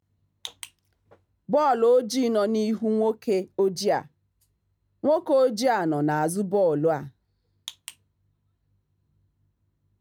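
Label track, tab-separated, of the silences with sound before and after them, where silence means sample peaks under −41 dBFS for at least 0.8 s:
4.060000	5.030000	silence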